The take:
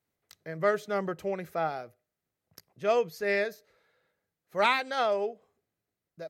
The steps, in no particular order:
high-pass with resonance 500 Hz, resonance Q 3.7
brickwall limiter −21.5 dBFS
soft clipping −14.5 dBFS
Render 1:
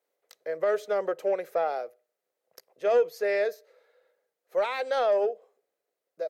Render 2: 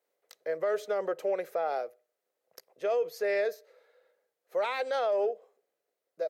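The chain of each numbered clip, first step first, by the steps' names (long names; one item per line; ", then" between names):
brickwall limiter, then high-pass with resonance, then soft clipping
high-pass with resonance, then brickwall limiter, then soft clipping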